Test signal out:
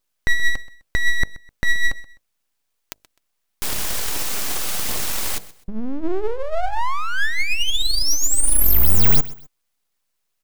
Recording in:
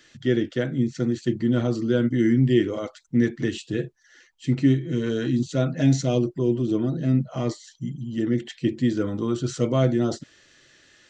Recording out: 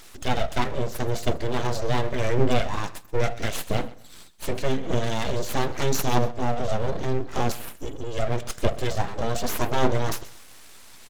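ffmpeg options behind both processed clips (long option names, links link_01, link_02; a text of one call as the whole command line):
ffmpeg -i in.wav -filter_complex "[0:a]asplit=2[link_01][link_02];[link_02]acompressor=threshold=-30dB:ratio=6,volume=2dB[link_03];[link_01][link_03]amix=inputs=2:normalize=0,bass=frequency=250:gain=-3,treble=frequency=4000:gain=7,bandreject=frequency=50:width_type=h:width=6,bandreject=frequency=100:width_type=h:width=6,bandreject=frequency=150:width_type=h:width=6,bandreject=frequency=200:width_type=h:width=6,bandreject=frequency=250:width_type=h:width=6,bandreject=frequency=300:width_type=h:width=6,bandreject=frequency=350:width_type=h:width=6,bandreject=frequency=400:width_type=h:width=6,asoftclip=type=tanh:threshold=-5dB,aphaser=in_gain=1:out_gain=1:delay=4.1:decay=0.37:speed=0.81:type=triangular,aeval=exprs='abs(val(0))':channel_layout=same,asplit=2[link_04][link_05];[link_05]aecho=0:1:128|256:0.112|0.0325[link_06];[link_04][link_06]amix=inputs=2:normalize=0" out.wav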